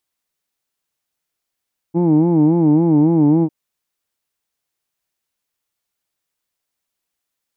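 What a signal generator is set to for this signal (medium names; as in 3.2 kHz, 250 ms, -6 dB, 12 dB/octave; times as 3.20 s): formant-synthesis vowel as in who'd, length 1.55 s, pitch 164 Hz, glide -1 st, vibrato 3.6 Hz, vibrato depth 1.3 st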